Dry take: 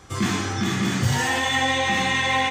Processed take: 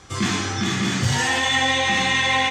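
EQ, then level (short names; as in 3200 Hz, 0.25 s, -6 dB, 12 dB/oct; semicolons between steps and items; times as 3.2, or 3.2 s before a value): air absorption 55 m; high shelf 2700 Hz +8.5 dB; 0.0 dB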